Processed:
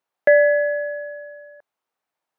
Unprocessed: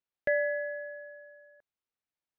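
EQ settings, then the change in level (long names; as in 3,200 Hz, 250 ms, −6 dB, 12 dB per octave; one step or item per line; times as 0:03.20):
high-pass filter 120 Hz
parametric band 840 Hz +12 dB 2.1 octaves
+5.5 dB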